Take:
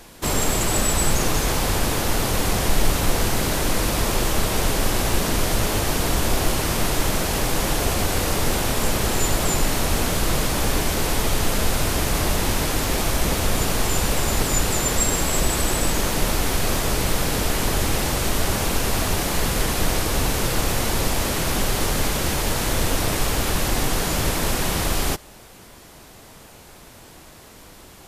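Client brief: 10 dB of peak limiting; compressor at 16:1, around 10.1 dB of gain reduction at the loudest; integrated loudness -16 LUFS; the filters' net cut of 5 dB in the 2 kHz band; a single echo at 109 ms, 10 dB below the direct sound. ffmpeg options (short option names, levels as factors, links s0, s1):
-af "equalizer=f=2000:t=o:g=-6.5,acompressor=threshold=0.0794:ratio=16,alimiter=limit=0.0708:level=0:latency=1,aecho=1:1:109:0.316,volume=6.68"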